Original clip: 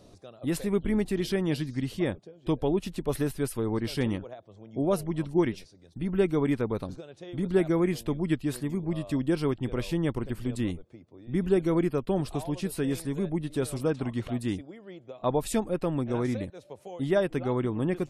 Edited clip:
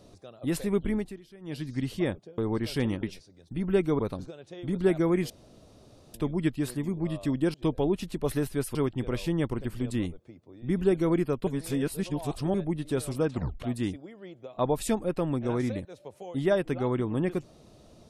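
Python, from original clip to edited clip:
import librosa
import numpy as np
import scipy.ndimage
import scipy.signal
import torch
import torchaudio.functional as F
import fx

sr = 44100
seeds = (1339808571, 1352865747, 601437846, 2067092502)

y = fx.edit(x, sr, fx.fade_down_up(start_s=0.85, length_s=0.9, db=-23.0, fade_s=0.35),
    fx.move(start_s=2.38, length_s=1.21, to_s=9.4),
    fx.cut(start_s=4.24, length_s=1.24),
    fx.cut(start_s=6.44, length_s=0.25),
    fx.insert_room_tone(at_s=8.0, length_s=0.84),
    fx.reverse_span(start_s=12.12, length_s=1.07),
    fx.tape_stop(start_s=13.99, length_s=0.26), tone=tone)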